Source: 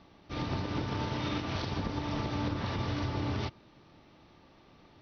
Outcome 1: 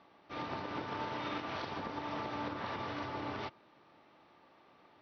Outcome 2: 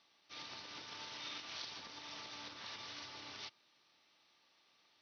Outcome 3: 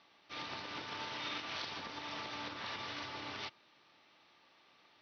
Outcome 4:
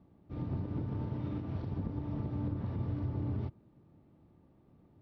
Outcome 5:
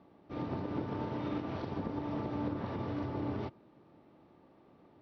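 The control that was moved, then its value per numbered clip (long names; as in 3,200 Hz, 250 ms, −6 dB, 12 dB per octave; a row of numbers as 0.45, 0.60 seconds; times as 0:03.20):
resonant band-pass, frequency: 1,100, 7,900, 3,000, 120, 380 Hertz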